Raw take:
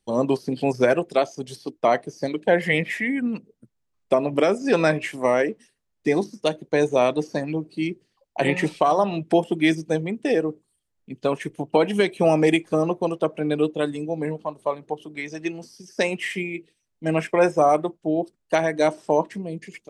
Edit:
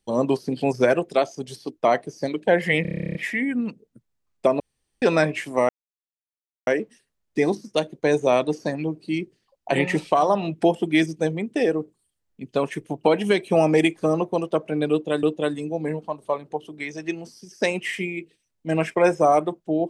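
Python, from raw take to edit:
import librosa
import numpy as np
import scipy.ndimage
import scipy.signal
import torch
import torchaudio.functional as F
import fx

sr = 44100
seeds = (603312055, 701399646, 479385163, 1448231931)

y = fx.edit(x, sr, fx.stutter(start_s=2.82, slice_s=0.03, count=12),
    fx.room_tone_fill(start_s=4.27, length_s=0.42),
    fx.insert_silence(at_s=5.36, length_s=0.98),
    fx.repeat(start_s=13.6, length_s=0.32, count=2), tone=tone)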